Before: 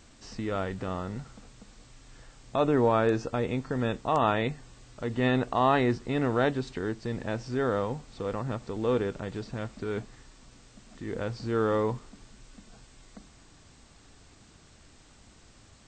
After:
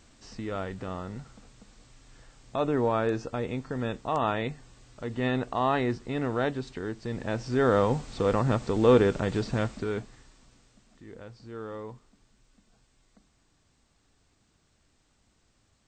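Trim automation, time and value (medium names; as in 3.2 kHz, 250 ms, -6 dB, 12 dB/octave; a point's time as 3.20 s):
6.92 s -2.5 dB
7.96 s +7.5 dB
9.60 s +7.5 dB
10.01 s -0.5 dB
11.24 s -12.5 dB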